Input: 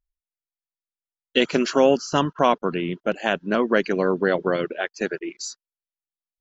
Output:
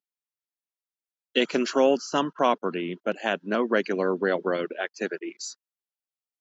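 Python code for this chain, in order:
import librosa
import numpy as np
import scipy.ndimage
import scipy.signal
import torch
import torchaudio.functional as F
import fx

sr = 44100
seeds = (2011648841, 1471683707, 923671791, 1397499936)

y = scipy.signal.sosfilt(scipy.signal.butter(4, 190.0, 'highpass', fs=sr, output='sos'), x)
y = y * 10.0 ** (-3.5 / 20.0)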